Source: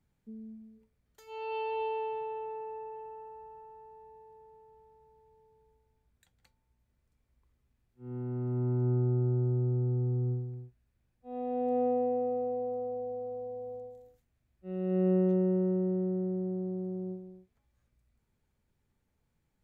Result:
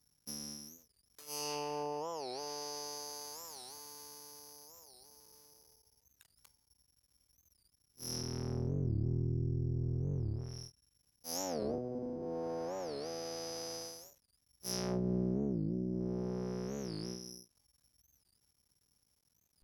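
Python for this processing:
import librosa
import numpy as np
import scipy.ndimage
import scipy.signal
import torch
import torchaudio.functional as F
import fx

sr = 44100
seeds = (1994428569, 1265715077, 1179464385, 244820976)

y = fx.cycle_switch(x, sr, every=3, mode='muted')
y = scipy.signal.sosfilt(scipy.signal.butter(2, 42.0, 'highpass', fs=sr, output='sos'), y)
y = (np.kron(y[::8], np.eye(8)[0]) * 8)[:len(y)]
y = fx.env_lowpass_down(y, sr, base_hz=330.0, full_db=-16.5)
y = fx.record_warp(y, sr, rpm=45.0, depth_cents=250.0)
y = y * 10.0 ** (-3.5 / 20.0)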